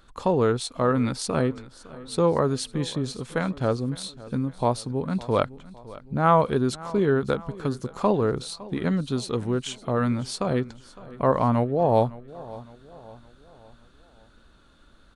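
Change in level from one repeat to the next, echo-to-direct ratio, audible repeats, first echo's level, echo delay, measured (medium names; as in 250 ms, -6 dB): -6.5 dB, -18.0 dB, 3, -19.0 dB, 559 ms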